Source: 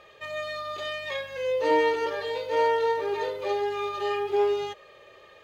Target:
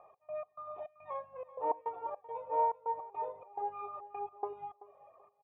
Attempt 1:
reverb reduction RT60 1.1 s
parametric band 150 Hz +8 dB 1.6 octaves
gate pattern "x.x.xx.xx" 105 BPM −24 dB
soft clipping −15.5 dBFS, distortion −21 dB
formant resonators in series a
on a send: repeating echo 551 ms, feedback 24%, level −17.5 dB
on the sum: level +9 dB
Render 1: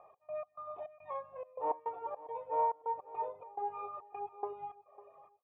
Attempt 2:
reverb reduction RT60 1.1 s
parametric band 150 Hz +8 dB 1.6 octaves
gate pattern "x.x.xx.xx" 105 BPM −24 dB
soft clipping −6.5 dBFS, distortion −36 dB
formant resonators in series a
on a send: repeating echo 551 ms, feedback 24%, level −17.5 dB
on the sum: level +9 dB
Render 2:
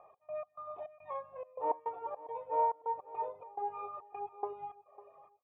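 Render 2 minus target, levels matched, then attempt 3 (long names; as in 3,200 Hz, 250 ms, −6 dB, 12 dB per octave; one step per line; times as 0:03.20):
echo 168 ms late
reverb reduction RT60 1.1 s
parametric band 150 Hz +8 dB 1.6 octaves
gate pattern "x.x.xx.xx" 105 BPM −24 dB
soft clipping −6.5 dBFS, distortion −36 dB
formant resonators in series a
on a send: repeating echo 383 ms, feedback 24%, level −17.5 dB
on the sum: level +9 dB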